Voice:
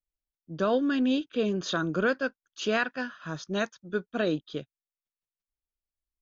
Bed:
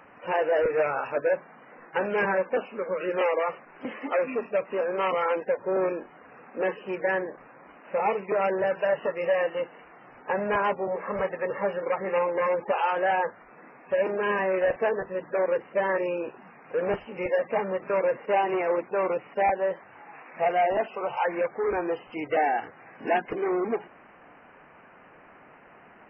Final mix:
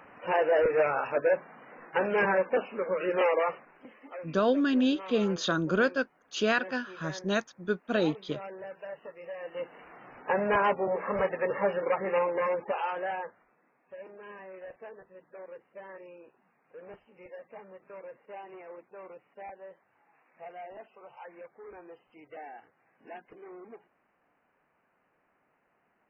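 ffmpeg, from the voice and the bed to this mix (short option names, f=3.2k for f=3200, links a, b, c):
-filter_complex "[0:a]adelay=3750,volume=0.5dB[a];[1:a]volume=16dB,afade=t=out:st=3.45:d=0.42:silence=0.158489,afade=t=in:st=9.41:d=0.5:silence=0.149624,afade=t=out:st=11.8:d=1.79:silence=0.0944061[b];[a][b]amix=inputs=2:normalize=0"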